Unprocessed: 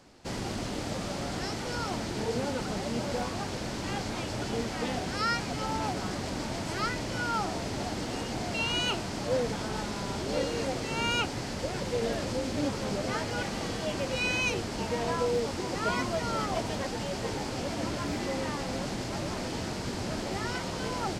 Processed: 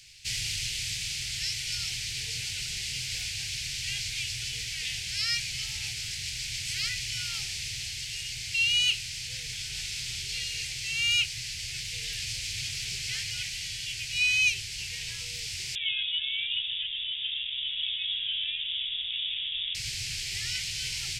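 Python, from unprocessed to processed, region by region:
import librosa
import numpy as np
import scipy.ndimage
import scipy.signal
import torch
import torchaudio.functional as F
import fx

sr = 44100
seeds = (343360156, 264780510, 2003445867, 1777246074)

y = fx.chain(x, sr, fx.freq_invert(carrier_hz=3600),
    fx.peak_eq(hz=2100.0, db=-10.5, octaves=1.9), at=(15.75, 19.75))
y = scipy.signal.sosfilt(scipy.signal.ellip(3, 1.0, 40, [140.0, 2400.0], 'bandstop', fs=sr, output='sos'), y)
y = fx.rider(y, sr, range_db=10, speed_s=2.0)
y = fx.low_shelf_res(y, sr, hz=280.0, db=-11.5, q=3.0)
y = F.gain(torch.from_numpy(y), 7.5).numpy()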